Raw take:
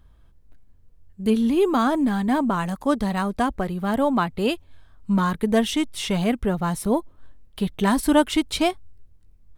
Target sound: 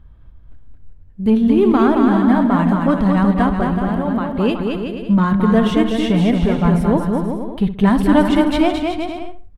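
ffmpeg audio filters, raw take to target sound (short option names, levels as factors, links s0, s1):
-filter_complex "[0:a]bass=f=250:g=6,treble=f=4000:g=-14,asettb=1/sr,asplit=3[s0][s1][s2];[s0]atrim=end=3.764[s3];[s1]atrim=start=3.76:end=4.37,asetpts=PTS-STARTPTS,afade=t=in:d=0.004:c=qsin,afade=t=out:st=0.606:d=0.004:c=qsin,acompressor=threshold=0.0708:ratio=6[s4];[s2]atrim=start=4.366[s5];[s3][s4]acrossfade=d=0.004:c1=hsin:c2=qsin[s6];[s6][s5]acrossfade=d=0.004:c1=qsin:c2=hsin,asplit=2[s7][s8];[s8]adelay=64,lowpass=f=2400:p=1,volume=0.266,asplit=2[s9][s10];[s10]adelay=64,lowpass=f=2400:p=1,volume=0.33,asplit=2[s11][s12];[s12]adelay=64,lowpass=f=2400:p=1,volume=0.33[s13];[s9][s11][s13]amix=inputs=3:normalize=0[s14];[s7][s14]amix=inputs=2:normalize=0,asoftclip=type=tanh:threshold=0.422,asplit=2[s15][s16];[s16]aecho=0:1:220|374|481.8|557.3|610.1:0.631|0.398|0.251|0.158|0.1[s17];[s15][s17]amix=inputs=2:normalize=0,volume=1.5"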